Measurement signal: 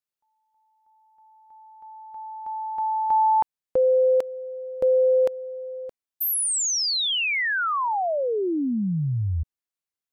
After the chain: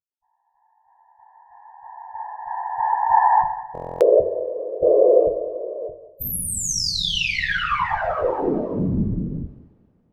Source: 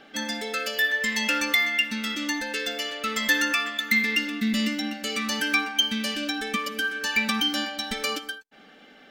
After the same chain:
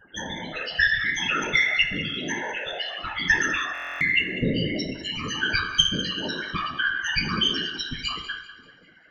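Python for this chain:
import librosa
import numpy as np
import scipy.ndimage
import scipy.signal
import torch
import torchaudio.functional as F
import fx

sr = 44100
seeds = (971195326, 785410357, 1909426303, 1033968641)

y = fx.lower_of_two(x, sr, delay_ms=5.8)
y = fx.spec_topn(y, sr, count=8)
y = fx.whisperise(y, sr, seeds[0])
y = fx.echo_thinned(y, sr, ms=195, feedback_pct=38, hz=310.0, wet_db=-14.0)
y = fx.rev_double_slope(y, sr, seeds[1], early_s=0.67, late_s=3.4, knee_db=-28, drr_db=6.0)
y = fx.buffer_glitch(y, sr, at_s=(3.73,), block=1024, repeats=11)
y = y * librosa.db_to_amplitude(3.0)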